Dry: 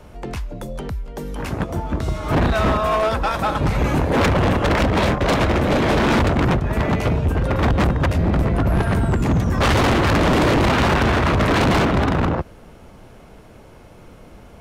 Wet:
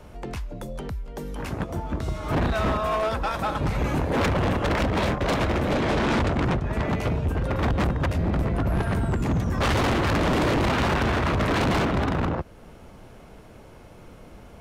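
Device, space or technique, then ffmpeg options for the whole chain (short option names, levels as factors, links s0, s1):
parallel compression: -filter_complex "[0:a]asettb=1/sr,asplit=3[s0][s1][s2];[s0]atrim=end=5.744[s3];[s1]atrim=start=5.74:end=6.87,asetpts=PTS-STARTPTS,afade=t=in:d=0.004:c=qsin,afade=t=out:st=1.126:d=0.004:c=qsin,lowpass=9800[s4];[s2]atrim=start=6.866[s5];[s3][s4]acrossfade=d=0.004:c1=hsin:c2=qsin[s6];[s6][s5]acrossfade=d=0.004:c1=qsin:c2=hsin,asplit=2[s7][s8];[s8]acompressor=threshold=0.0251:ratio=6,volume=0.668[s9];[s7][s9]amix=inputs=2:normalize=0,volume=0.447"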